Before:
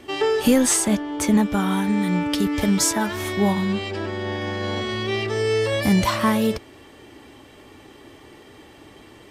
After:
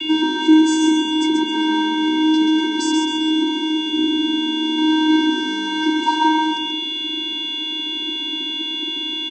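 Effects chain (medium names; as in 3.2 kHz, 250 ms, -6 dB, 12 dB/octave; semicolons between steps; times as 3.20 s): rattle on loud lows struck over -24 dBFS, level -18 dBFS; 2.91–4.78 s: peaking EQ 1.4 kHz -9.5 dB 2.9 oct; whistle 2.9 kHz -26 dBFS; in parallel at -5 dB: fuzz box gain 30 dB, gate -34 dBFS; on the sum: vocoder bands 16, square 313 Hz; on a send: feedback delay 133 ms, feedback 42%, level -4 dB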